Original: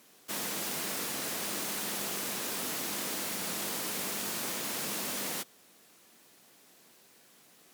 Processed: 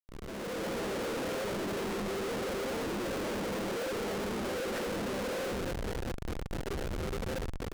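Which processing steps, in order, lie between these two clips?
spectral contrast raised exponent 3.6; compressor 16:1, threshold -40 dBFS, peak gain reduction 8.5 dB; vocal tract filter e; bell 390 Hz +5.5 dB 0.21 oct; echo 0.249 s -20.5 dB; shoebox room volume 380 m³, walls furnished, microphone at 7.9 m; Schmitt trigger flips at -56 dBFS; AGC gain up to 7.5 dB; Doppler distortion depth 0.93 ms; gain +2.5 dB

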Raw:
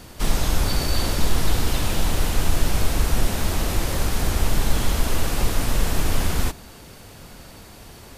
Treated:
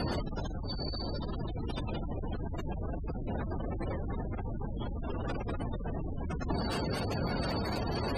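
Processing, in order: HPF 79 Hz 6 dB/oct; negative-ratio compressor -36 dBFS, ratio -1; spectral gate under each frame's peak -15 dB strong; gain +3.5 dB

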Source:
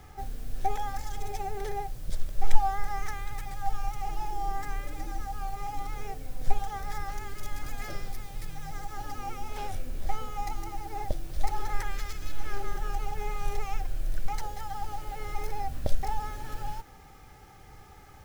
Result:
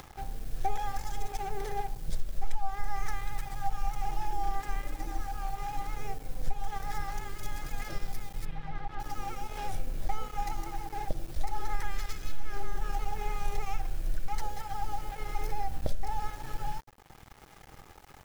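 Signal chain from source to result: 8.45–9 LPF 3500 Hz 24 dB/oct; shoebox room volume 3900 m³, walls furnished, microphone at 0.71 m; upward compressor, threshold -35 dBFS; crossover distortion -43 dBFS; compressor 4:1, threshold -21 dBFS, peak gain reduction 11 dB

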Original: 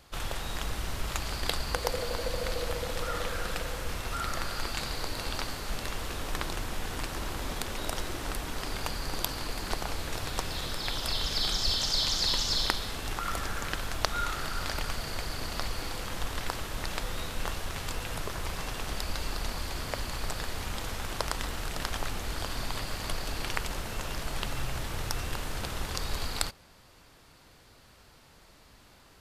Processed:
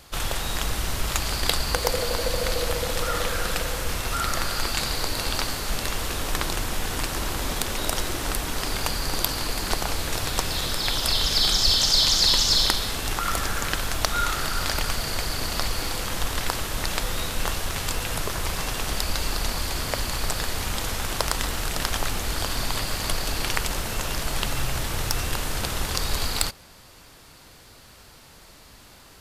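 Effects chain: high shelf 4800 Hz +6 dB; in parallel at -11 dB: sine folder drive 8 dB, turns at -3.5 dBFS

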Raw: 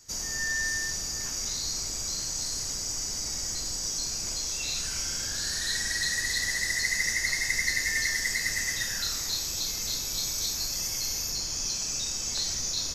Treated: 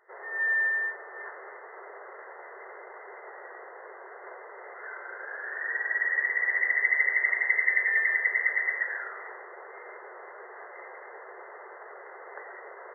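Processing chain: brick-wall FIR band-pass 360–2100 Hz; gain +5.5 dB

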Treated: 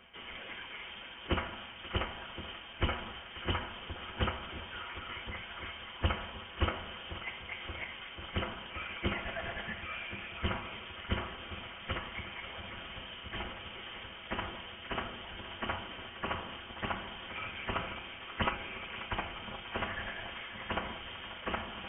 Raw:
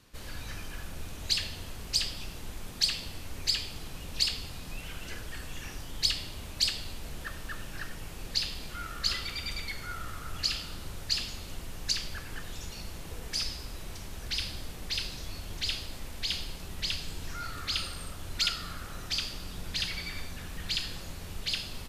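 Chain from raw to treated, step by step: minimum comb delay 6.6 ms; HPF 300 Hz 12 dB/oct; reverse; upward compressor, threshold -40 dBFS; reverse; formant shift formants -5 st; on a send: echo with dull and thin repeats by turns 0.535 s, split 2300 Hz, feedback 81%, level -10.5 dB; on the sum: inverted band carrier 3400 Hz; gain +1 dB

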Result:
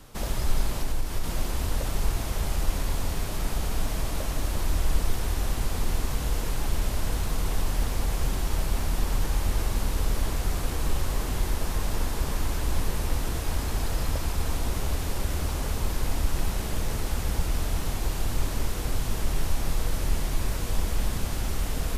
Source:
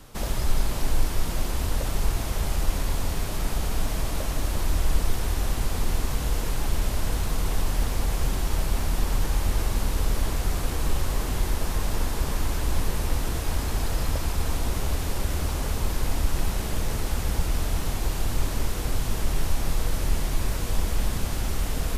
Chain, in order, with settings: 0.69–1.24 compressor, threshold -19 dBFS, peak gain reduction 6 dB; gain -1.5 dB

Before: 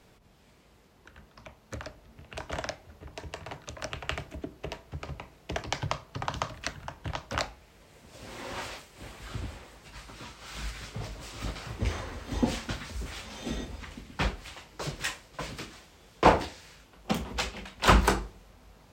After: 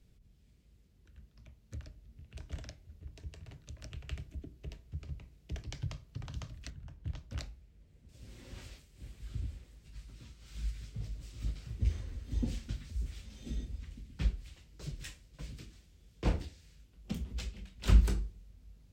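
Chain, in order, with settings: passive tone stack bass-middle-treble 10-0-1; 6.7–8.09 mismatched tape noise reduction decoder only; gain +8.5 dB

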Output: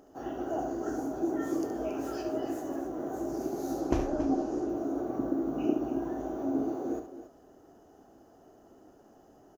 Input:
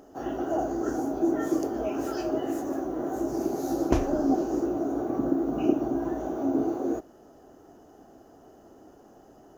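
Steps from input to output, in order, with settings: 3.8–4.69 Bessel low-pass 8000 Hz, order 2; on a send: loudspeakers at several distances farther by 24 m -8 dB, 95 m -12 dB; on the sum: gain -5.5 dB

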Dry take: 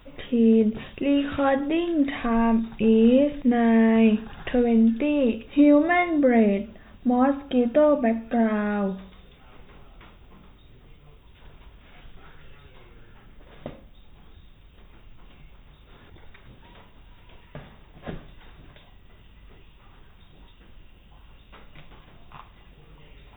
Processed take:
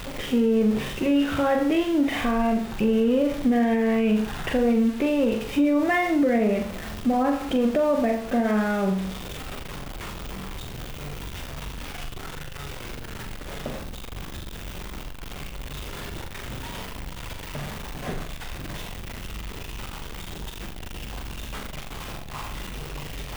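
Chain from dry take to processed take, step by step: zero-crossing step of -31 dBFS; flutter echo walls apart 7.2 m, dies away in 0.4 s; limiter -14 dBFS, peak gain reduction 7.5 dB

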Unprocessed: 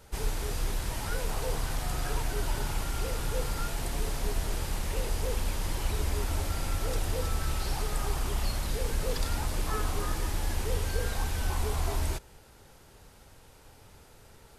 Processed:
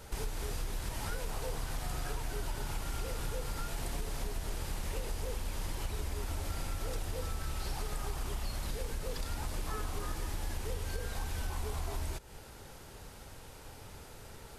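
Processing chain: compressor, threshold -38 dBFS, peak gain reduction 14.5 dB; gain +4.5 dB

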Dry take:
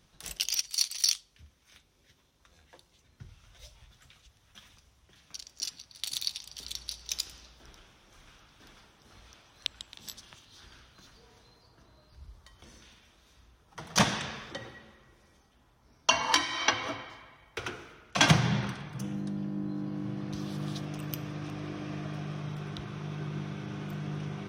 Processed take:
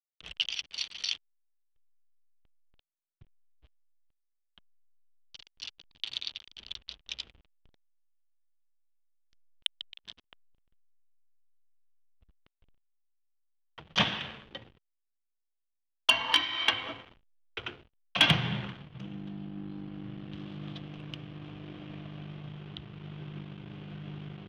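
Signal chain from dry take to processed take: backlash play -36.5 dBFS; synth low-pass 3100 Hz, resonance Q 4; overloaded stage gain 6.5 dB; gain -5 dB

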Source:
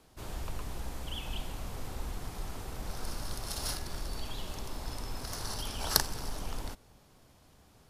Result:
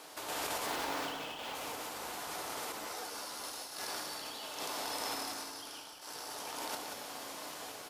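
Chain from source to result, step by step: 0.66–1.55 median filter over 5 samples; HPF 530 Hz 12 dB/oct; negative-ratio compressor -53 dBFS, ratio -1; random-step tremolo; frequency-shifting echo 0.182 s, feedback 46%, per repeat -36 Hz, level -7 dB; FDN reverb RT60 1.1 s, low-frequency decay 1.25×, high-frequency decay 0.75×, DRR 4.5 dB; 2.72–3.44 ensemble effect; gain +11 dB

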